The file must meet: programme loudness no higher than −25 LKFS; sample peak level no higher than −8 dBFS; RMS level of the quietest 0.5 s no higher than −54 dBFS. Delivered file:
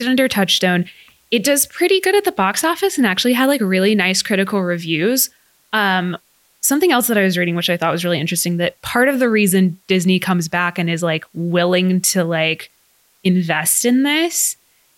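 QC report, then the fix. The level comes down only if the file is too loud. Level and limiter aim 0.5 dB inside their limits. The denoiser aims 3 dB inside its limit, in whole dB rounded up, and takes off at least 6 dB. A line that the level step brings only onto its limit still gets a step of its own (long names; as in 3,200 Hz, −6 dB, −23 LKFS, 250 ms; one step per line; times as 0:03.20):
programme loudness −16.0 LKFS: out of spec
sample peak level −3.0 dBFS: out of spec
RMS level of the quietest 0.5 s −57 dBFS: in spec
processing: level −9.5 dB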